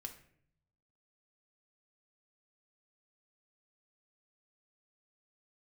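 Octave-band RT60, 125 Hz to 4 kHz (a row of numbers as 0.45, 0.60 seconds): 1.2, 0.90, 0.70, 0.55, 0.60, 0.40 seconds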